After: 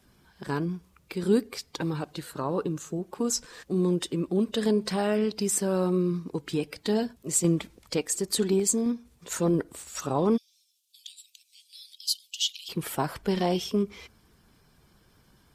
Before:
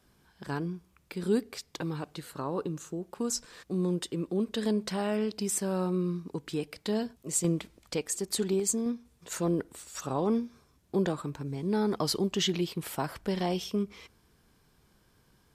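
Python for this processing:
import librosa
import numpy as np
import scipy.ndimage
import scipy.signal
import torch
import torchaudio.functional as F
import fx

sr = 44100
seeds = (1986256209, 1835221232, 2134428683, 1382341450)

y = fx.spec_quant(x, sr, step_db=15)
y = fx.steep_highpass(y, sr, hz=2900.0, slope=48, at=(10.36, 12.68), fade=0.02)
y = F.gain(torch.from_numpy(y), 4.5).numpy()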